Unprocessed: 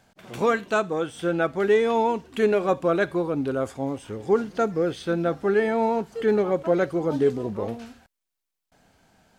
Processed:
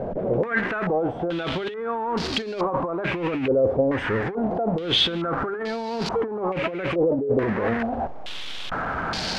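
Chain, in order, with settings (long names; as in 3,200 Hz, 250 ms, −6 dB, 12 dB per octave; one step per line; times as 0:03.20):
converter with a step at zero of −28.5 dBFS
mains-hum notches 50/100/150/200/250 Hz
compressor whose output falls as the input rises −27 dBFS, ratio −1
low-pass on a step sequencer 2.3 Hz 530–4,600 Hz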